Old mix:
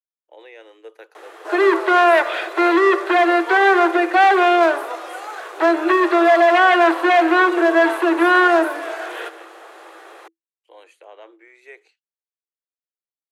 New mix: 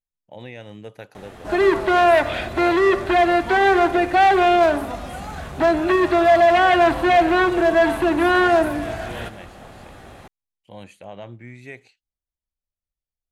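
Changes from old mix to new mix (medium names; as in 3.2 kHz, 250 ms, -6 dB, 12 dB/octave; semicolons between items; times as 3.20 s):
background -6.0 dB; master: remove rippled Chebyshev high-pass 320 Hz, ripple 6 dB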